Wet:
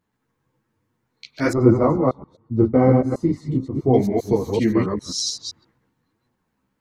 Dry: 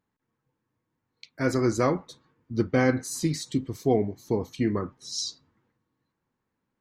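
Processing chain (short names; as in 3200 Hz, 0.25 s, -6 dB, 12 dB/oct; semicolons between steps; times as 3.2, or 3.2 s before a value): reverse delay 0.131 s, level -2 dB; chorus voices 2, 1.2 Hz, delay 12 ms, depth 3.6 ms; 1.53–3.94 polynomial smoothing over 65 samples; gain +8.5 dB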